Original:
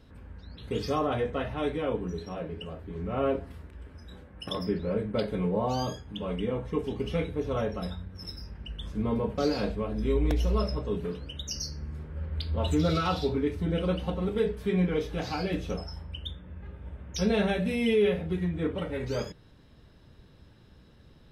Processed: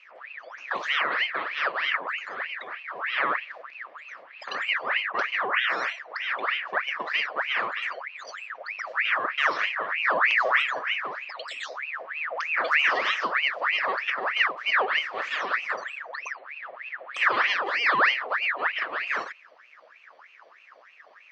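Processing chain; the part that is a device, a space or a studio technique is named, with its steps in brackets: voice changer toy (ring modulator with a swept carrier 1.6 kHz, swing 65%, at 3.2 Hz; cabinet simulation 480–5000 Hz, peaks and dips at 570 Hz +3 dB, 850 Hz -5 dB, 1.2 kHz +4 dB, 1.8 kHz +6 dB, 3.8 kHz -4 dB); trim +3.5 dB

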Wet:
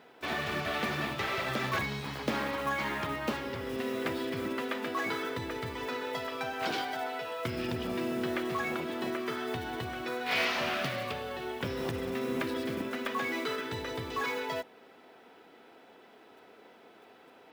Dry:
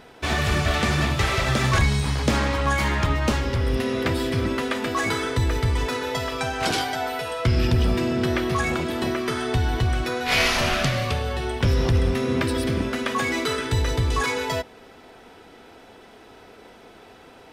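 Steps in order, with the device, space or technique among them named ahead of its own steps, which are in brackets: early digital voice recorder (band-pass 210–4000 Hz; block-companded coder 5-bit); trim -8 dB

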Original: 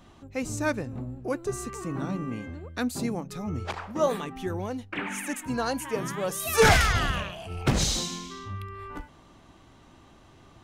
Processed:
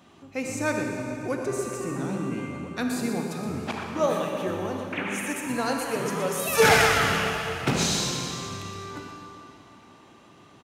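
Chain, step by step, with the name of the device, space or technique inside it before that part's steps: PA in a hall (high-pass 140 Hz 12 dB/octave; peaking EQ 2.5 kHz +3.5 dB 0.28 oct; delay 120 ms -9.5 dB; reverberation RT60 3.2 s, pre-delay 32 ms, DRR 2 dB)

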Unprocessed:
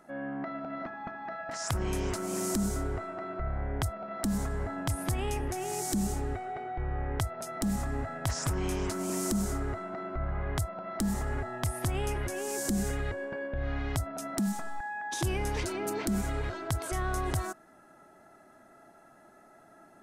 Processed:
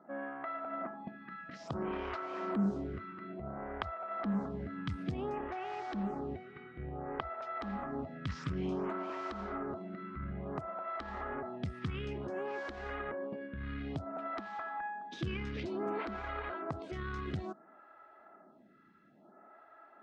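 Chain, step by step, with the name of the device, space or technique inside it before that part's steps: vibe pedal into a guitar amplifier (lamp-driven phase shifter 0.57 Hz; valve stage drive 21 dB, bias 0.6; cabinet simulation 84–3600 Hz, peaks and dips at 110 Hz -8 dB, 200 Hz +6 dB, 1.2 kHz +6 dB); trim +1.5 dB

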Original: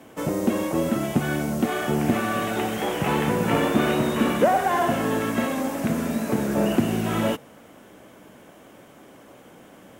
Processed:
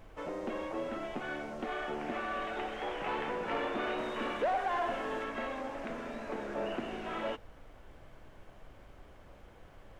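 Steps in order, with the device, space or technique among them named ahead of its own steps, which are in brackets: 3.98–5.24 s: treble shelf 6.1 kHz +6.5 dB; aircraft cabin announcement (band-pass 430–3200 Hz; saturation -16 dBFS, distortion -19 dB; brown noise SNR 15 dB); trim -8.5 dB

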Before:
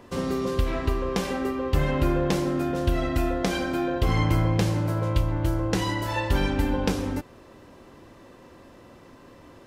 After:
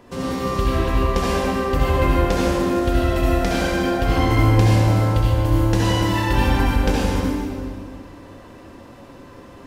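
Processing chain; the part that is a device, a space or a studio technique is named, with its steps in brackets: stairwell (reverberation RT60 2.0 s, pre-delay 61 ms, DRR -6 dB)

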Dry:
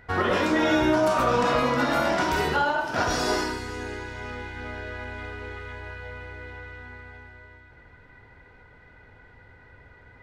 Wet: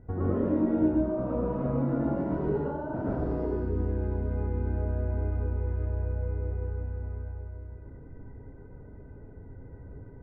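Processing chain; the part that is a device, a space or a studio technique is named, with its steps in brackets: television next door (compression 4:1, threshold -30 dBFS, peak gain reduction 10.5 dB; low-pass 340 Hz 12 dB/octave; reverberation RT60 0.40 s, pre-delay 104 ms, DRR -6 dB); trim +4.5 dB

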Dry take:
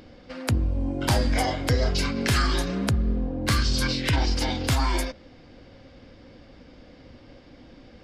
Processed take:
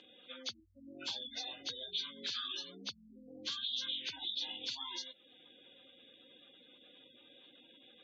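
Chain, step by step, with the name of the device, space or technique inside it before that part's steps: pre-emphasis filter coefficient 0.9; spectral gate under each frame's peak -15 dB strong; dynamic bell 6.8 kHz, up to +7 dB, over -55 dBFS, Q 4.3; hearing aid with frequency lowering (knee-point frequency compression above 1.8 kHz 1.5:1; compression 2.5:1, threshold -51 dBFS, peak gain reduction 14.5 dB; cabinet simulation 320–6100 Hz, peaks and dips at 660 Hz -7 dB, 1.9 kHz -9 dB, 3.5 kHz +5 dB, 5.4 kHz -6 dB); trim +7 dB

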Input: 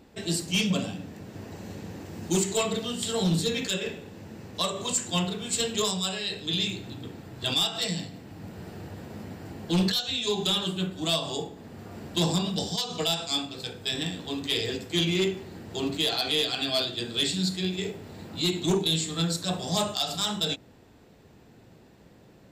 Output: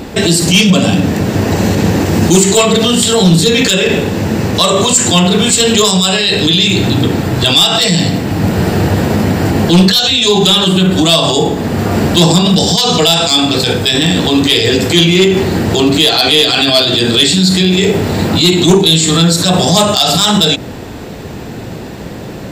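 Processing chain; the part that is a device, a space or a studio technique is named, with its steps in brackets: loud club master (compression 2.5:1, threshold -28 dBFS, peak gain reduction 5 dB; hard clipper -21.5 dBFS, distortion -37 dB; loudness maximiser +30 dB); trim -1 dB

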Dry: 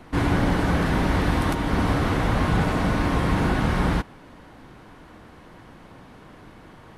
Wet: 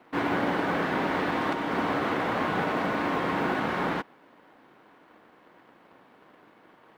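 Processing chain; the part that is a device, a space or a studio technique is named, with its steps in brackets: phone line with mismatched companding (band-pass 300–3200 Hz; companding laws mixed up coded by A)

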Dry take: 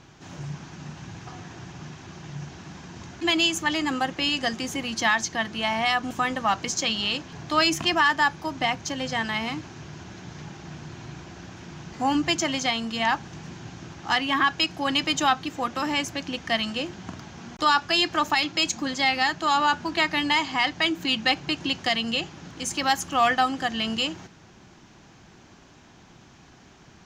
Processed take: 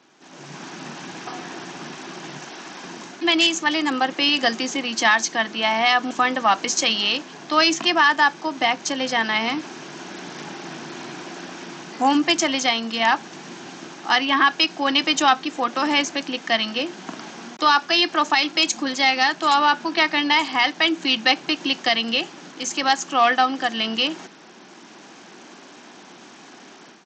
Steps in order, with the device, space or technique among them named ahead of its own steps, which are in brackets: 2.38–2.83 s: high-pass 380 Hz 6 dB/octave; Bluetooth headset (high-pass 230 Hz 24 dB/octave; level rider gain up to 13 dB; resampled via 16 kHz; trim -3.5 dB; SBC 64 kbps 32 kHz)

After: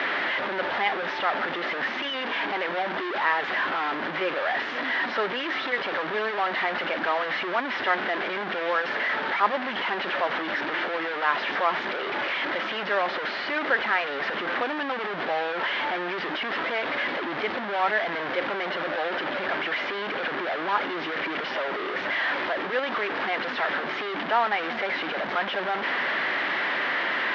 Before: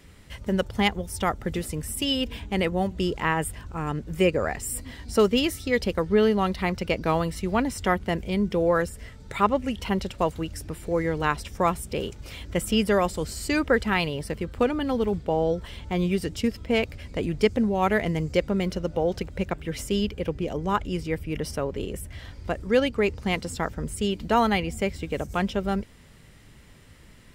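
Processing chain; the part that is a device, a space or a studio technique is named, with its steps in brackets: digital answering machine (band-pass 390–3100 Hz; one-bit delta coder 32 kbps, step -19.5 dBFS; cabinet simulation 390–3100 Hz, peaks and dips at 460 Hz -8 dB, 1.7 kHz +5 dB, 2.6 kHz -4 dB)

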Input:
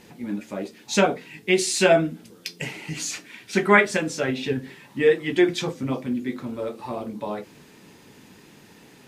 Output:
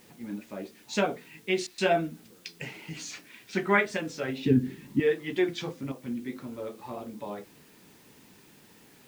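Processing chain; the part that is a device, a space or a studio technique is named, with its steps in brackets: worn cassette (low-pass 6.2 kHz; wow and flutter; level dips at 1.67/5.92 s, 109 ms -9 dB; white noise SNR 28 dB); 4.45–5.00 s: resonant low shelf 430 Hz +12 dB, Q 1.5; trim -7.5 dB

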